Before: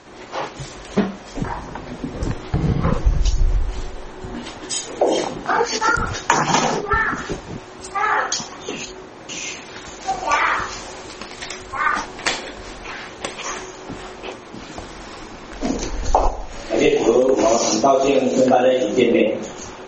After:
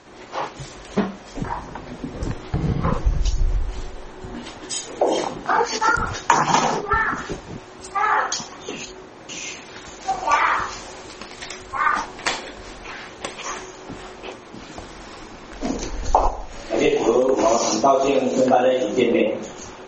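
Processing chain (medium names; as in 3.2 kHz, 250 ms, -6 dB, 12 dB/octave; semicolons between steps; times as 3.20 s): dynamic bell 1 kHz, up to +5 dB, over -31 dBFS, Q 1.8; trim -3 dB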